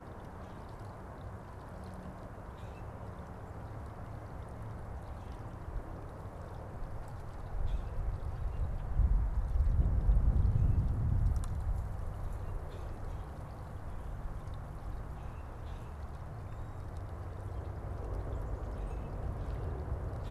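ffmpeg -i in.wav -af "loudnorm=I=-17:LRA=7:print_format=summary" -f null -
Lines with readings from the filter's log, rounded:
Input Integrated:    -39.8 LUFS
Input True Peak:     -17.6 dBTP
Input LRA:            12.5 LU
Input Threshold:     -49.8 LUFS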